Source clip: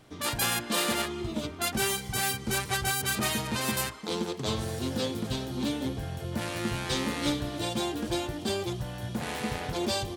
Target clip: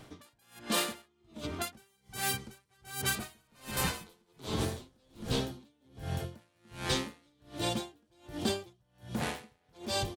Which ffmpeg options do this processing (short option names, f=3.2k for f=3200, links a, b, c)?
-filter_complex "[0:a]acompressor=threshold=-34dB:ratio=2,asplit=3[a][b][c];[a]afade=t=out:st=3.19:d=0.02[d];[b]asplit=6[e][f][g][h][i][j];[f]adelay=324,afreqshift=-50,volume=-4dB[k];[g]adelay=648,afreqshift=-100,volume=-12.2dB[l];[h]adelay=972,afreqshift=-150,volume=-20.4dB[m];[i]adelay=1296,afreqshift=-200,volume=-28.5dB[n];[j]adelay=1620,afreqshift=-250,volume=-36.7dB[o];[e][k][l][m][n][o]amix=inputs=6:normalize=0,afade=t=in:st=3.19:d=0.02,afade=t=out:st=5.4:d=0.02[p];[c]afade=t=in:st=5.4:d=0.02[q];[d][p][q]amix=inputs=3:normalize=0,aeval=exprs='val(0)*pow(10,-40*(0.5-0.5*cos(2*PI*1.3*n/s))/20)':c=same,volume=4.5dB"